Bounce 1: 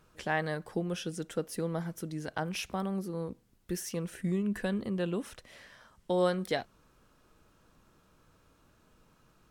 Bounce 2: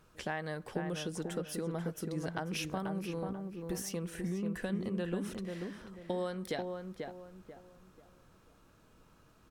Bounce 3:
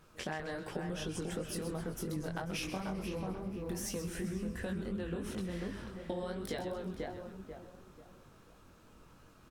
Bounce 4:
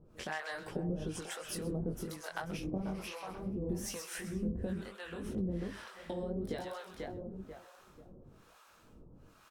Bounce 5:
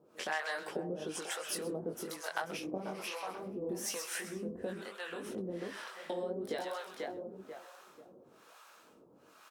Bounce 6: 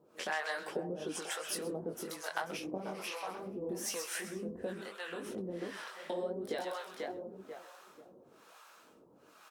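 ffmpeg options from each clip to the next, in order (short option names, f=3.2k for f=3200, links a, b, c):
-filter_complex "[0:a]acompressor=threshold=-33dB:ratio=6,asplit=2[a][b];[b]adelay=489,lowpass=f=1.6k:p=1,volume=-4dB,asplit=2[c][d];[d]adelay=489,lowpass=f=1.6k:p=1,volume=0.34,asplit=2[e][f];[f]adelay=489,lowpass=f=1.6k:p=1,volume=0.34,asplit=2[g][h];[h]adelay=489,lowpass=f=1.6k:p=1,volume=0.34[i];[c][e][g][i]amix=inputs=4:normalize=0[j];[a][j]amix=inputs=2:normalize=0"
-filter_complex "[0:a]flanger=delay=19:depth=4.6:speed=2.8,acompressor=threshold=-41dB:ratio=6,asplit=7[a][b][c][d][e][f][g];[b]adelay=130,afreqshift=-140,volume=-10dB[h];[c]adelay=260,afreqshift=-280,volume=-15.5dB[i];[d]adelay=390,afreqshift=-420,volume=-21dB[j];[e]adelay=520,afreqshift=-560,volume=-26.5dB[k];[f]adelay=650,afreqshift=-700,volume=-32.1dB[l];[g]adelay=780,afreqshift=-840,volume=-37.6dB[m];[a][h][i][j][k][l][m]amix=inputs=7:normalize=0,volume=6dB"
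-filter_complex "[0:a]acrossover=split=630[a][b];[a]aeval=exprs='val(0)*(1-1/2+1/2*cos(2*PI*1.1*n/s))':c=same[c];[b]aeval=exprs='val(0)*(1-1/2-1/2*cos(2*PI*1.1*n/s))':c=same[d];[c][d]amix=inputs=2:normalize=0,volume=4.5dB"
-af "highpass=370,volume=4dB"
-af "flanger=delay=1:depth=5.7:regen=80:speed=1.1:shape=sinusoidal,volume=4.5dB"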